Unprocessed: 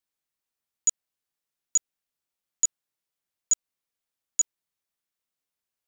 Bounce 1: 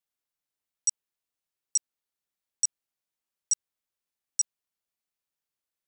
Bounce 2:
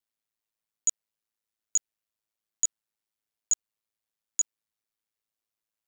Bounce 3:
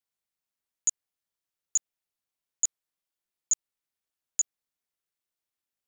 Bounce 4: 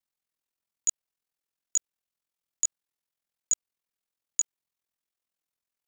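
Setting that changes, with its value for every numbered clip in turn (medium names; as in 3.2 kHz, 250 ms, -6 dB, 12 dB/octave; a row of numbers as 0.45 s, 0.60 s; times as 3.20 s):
ring modulator, frequency: 1.1 kHz, 54 Hz, 170 Hz, 21 Hz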